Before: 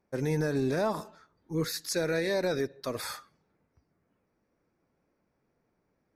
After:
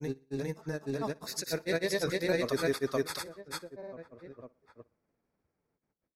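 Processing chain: Doppler pass-by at 2.78, 7 m/s, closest 8.7 m; outdoor echo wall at 260 m, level -15 dB; grains, grains 20/s, spray 0.544 s, pitch spread up and down by 0 st; on a send: feedback echo 60 ms, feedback 41%, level -23 dB; on the sum: gain +2.5 dB

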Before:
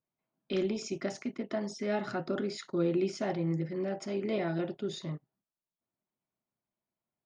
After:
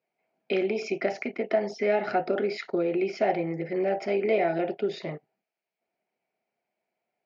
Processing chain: compressor, threshold -31 dBFS, peak gain reduction 7 dB; speaker cabinet 270–4500 Hz, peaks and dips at 280 Hz -5 dB, 450 Hz +6 dB, 720 Hz +9 dB, 1100 Hz -9 dB, 2300 Hz +9 dB, 3600 Hz -9 dB; gain +8.5 dB

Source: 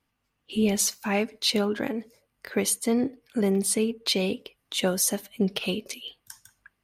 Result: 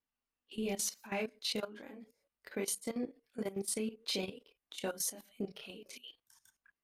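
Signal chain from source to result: chorus voices 6, 0.37 Hz, delay 28 ms, depth 5 ms; bell 110 Hz -10 dB 0.98 oct; level quantiser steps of 15 dB; gain -5 dB

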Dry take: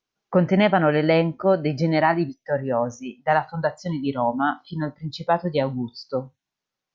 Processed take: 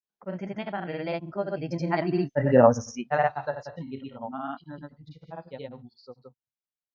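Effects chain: Doppler pass-by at 2.62, 14 m/s, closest 2.3 m; grains, pitch spread up and down by 0 st; gain +8.5 dB

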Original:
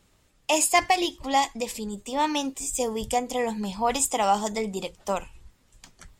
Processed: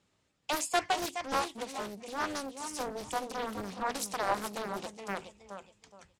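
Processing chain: BPF 100–7800 Hz; feedback echo 0.42 s, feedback 26%, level -9 dB; Doppler distortion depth 0.92 ms; gain -8.5 dB

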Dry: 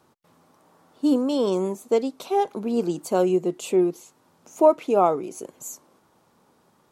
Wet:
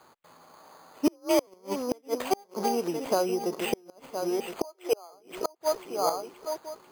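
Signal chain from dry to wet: regenerating reverse delay 0.508 s, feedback 44%, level -9 dB; 1.07–1.47 frequency shift +43 Hz; 2.51–3.53 compressor 10:1, threshold -25 dBFS, peak gain reduction 10 dB; 4.64–5.13 elliptic high-pass 350 Hz; three-band isolator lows -12 dB, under 510 Hz, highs -19 dB, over 3500 Hz; flipped gate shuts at -21 dBFS, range -36 dB; careless resampling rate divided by 8×, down none, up hold; gain +8 dB

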